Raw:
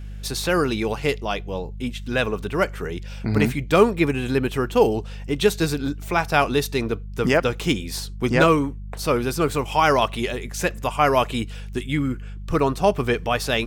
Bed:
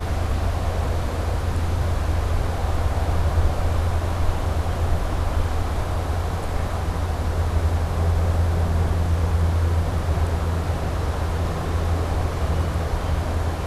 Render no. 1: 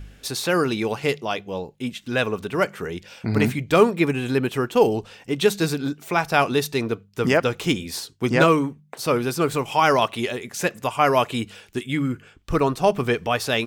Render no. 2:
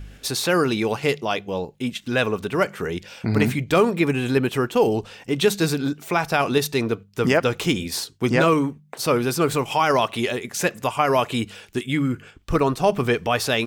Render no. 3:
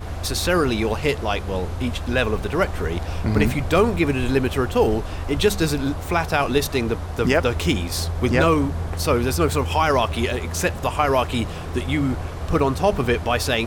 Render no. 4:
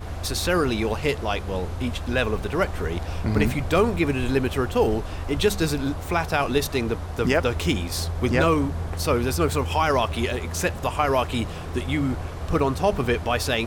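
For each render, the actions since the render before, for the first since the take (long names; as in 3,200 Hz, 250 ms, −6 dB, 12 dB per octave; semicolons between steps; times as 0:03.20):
hum removal 50 Hz, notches 4
in parallel at −2.5 dB: output level in coarse steps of 17 dB; on the sum: brickwall limiter −8 dBFS, peak gain reduction 8.5 dB
mix in bed −6 dB
level −2.5 dB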